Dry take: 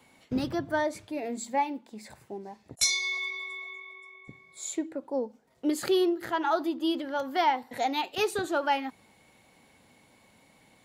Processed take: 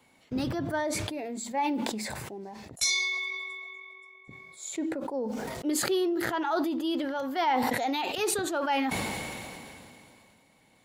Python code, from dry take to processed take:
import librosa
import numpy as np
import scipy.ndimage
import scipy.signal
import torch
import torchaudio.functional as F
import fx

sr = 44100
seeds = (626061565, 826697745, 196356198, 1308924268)

y = fx.sustainer(x, sr, db_per_s=22.0)
y = F.gain(torch.from_numpy(y), -3.0).numpy()